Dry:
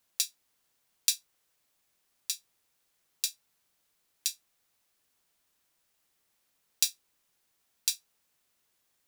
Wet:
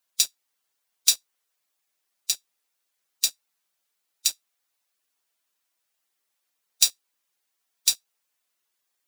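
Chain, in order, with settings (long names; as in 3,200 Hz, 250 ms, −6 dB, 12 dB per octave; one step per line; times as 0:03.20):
spectral magnitudes quantised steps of 15 dB
high-pass filter 540 Hz 6 dB per octave
leveller curve on the samples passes 2
level +1.5 dB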